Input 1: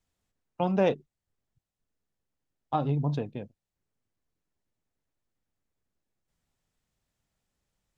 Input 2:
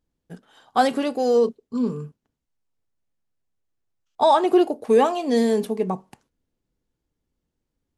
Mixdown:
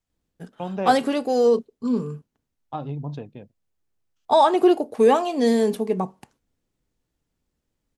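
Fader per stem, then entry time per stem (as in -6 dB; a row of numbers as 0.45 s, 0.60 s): -3.5 dB, +0.5 dB; 0.00 s, 0.10 s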